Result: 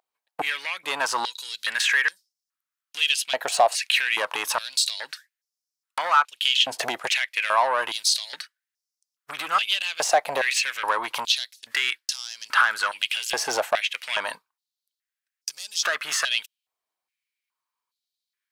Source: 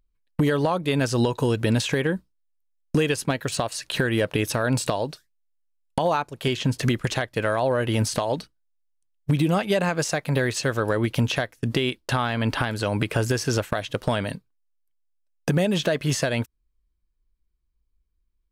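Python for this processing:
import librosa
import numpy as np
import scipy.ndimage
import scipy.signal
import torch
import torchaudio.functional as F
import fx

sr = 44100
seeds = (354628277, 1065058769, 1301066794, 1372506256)

y = 10.0 ** (-19.5 / 20.0) * np.tanh(x / 10.0 ** (-19.5 / 20.0))
y = fx.filter_held_highpass(y, sr, hz=2.4, low_hz=740.0, high_hz=5300.0)
y = F.gain(torch.from_numpy(y), 4.0).numpy()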